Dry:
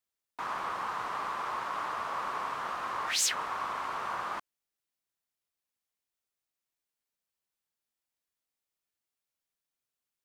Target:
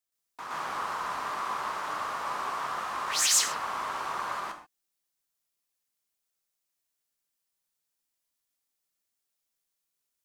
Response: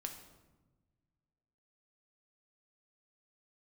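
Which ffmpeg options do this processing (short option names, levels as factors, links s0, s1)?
-filter_complex "[0:a]bass=f=250:g=-1,treble=f=4000:g=6,asplit=2[s0][s1];[1:a]atrim=start_sample=2205,atrim=end_sample=6615,adelay=120[s2];[s1][s2]afir=irnorm=-1:irlink=0,volume=2.11[s3];[s0][s3]amix=inputs=2:normalize=0,volume=0.631"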